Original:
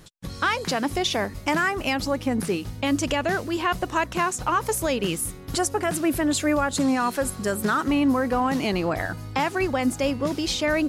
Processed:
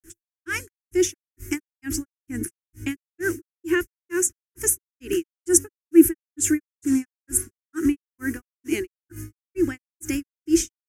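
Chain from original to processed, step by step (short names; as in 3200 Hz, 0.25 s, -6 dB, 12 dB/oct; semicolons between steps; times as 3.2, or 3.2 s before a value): EQ curve 100 Hz 0 dB, 190 Hz -18 dB, 340 Hz +14 dB, 540 Hz -24 dB, 1100 Hz -17 dB, 1600 Hz +3 dB, 2800 Hz -5 dB, 4100 Hz -19 dB, 6000 Hz +7 dB, 13000 Hz +13 dB; grains 0.24 s, grains 2.2/s, pitch spread up and down by 0 st; gain +2.5 dB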